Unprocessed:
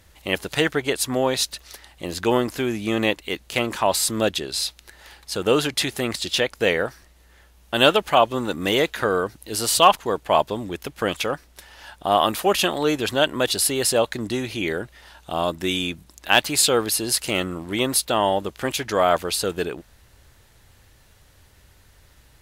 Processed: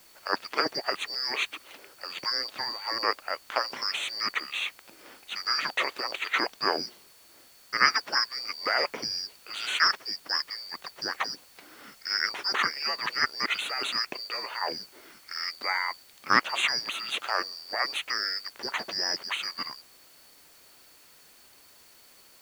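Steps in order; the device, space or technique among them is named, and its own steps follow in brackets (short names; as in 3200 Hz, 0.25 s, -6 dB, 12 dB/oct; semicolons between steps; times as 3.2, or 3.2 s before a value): split-band scrambled radio (four-band scrambler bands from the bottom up 2341; BPF 370–2800 Hz; white noise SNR 25 dB); gain -1 dB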